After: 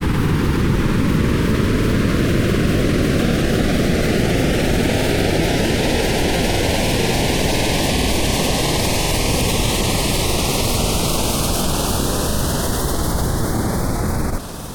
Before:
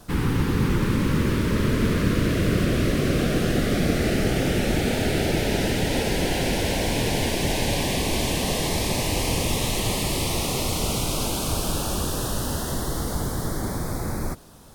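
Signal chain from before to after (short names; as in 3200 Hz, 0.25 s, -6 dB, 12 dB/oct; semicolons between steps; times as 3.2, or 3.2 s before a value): grains 0.1 s, pitch spread up and down by 0 st; fast leveller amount 50%; gain +5 dB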